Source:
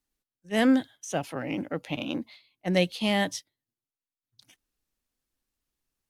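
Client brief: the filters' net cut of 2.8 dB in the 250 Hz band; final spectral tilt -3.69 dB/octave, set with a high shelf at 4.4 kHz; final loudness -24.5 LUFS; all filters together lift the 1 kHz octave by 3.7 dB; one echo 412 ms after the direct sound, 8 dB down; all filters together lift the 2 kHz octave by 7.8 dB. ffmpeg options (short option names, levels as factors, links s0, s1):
-af "equalizer=f=250:t=o:g=-3.5,equalizer=f=1000:t=o:g=4,equalizer=f=2000:t=o:g=7.5,highshelf=f=4400:g=3.5,aecho=1:1:412:0.398,volume=1.19"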